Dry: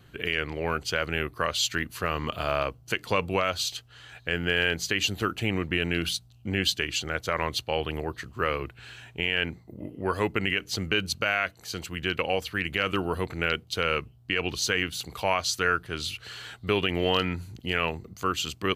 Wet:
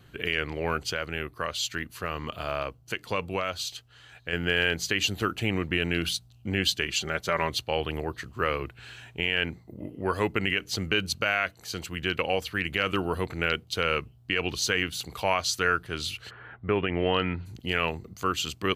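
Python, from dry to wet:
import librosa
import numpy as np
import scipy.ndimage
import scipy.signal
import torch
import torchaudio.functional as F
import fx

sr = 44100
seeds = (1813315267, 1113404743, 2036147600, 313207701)

y = fx.comb(x, sr, ms=5.1, depth=0.51, at=(6.86, 7.5))
y = fx.lowpass(y, sr, hz=fx.line((16.29, 1600.0), (17.45, 3600.0)), slope=24, at=(16.29, 17.45), fade=0.02)
y = fx.edit(y, sr, fx.clip_gain(start_s=0.93, length_s=3.4, db=-4.0), tone=tone)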